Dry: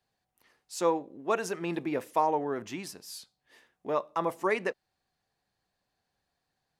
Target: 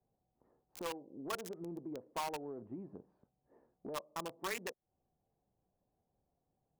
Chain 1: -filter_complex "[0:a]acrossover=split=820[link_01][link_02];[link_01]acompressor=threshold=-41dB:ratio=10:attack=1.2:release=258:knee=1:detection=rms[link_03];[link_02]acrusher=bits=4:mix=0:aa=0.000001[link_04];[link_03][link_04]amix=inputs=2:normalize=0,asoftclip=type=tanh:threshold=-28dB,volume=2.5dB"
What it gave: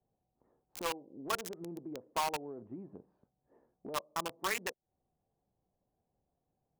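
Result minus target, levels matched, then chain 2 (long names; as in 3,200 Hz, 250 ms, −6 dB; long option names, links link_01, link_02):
soft clipping: distortion −8 dB
-filter_complex "[0:a]acrossover=split=820[link_01][link_02];[link_01]acompressor=threshold=-41dB:ratio=10:attack=1.2:release=258:knee=1:detection=rms[link_03];[link_02]acrusher=bits=4:mix=0:aa=0.000001[link_04];[link_03][link_04]amix=inputs=2:normalize=0,asoftclip=type=tanh:threshold=-34.5dB,volume=2.5dB"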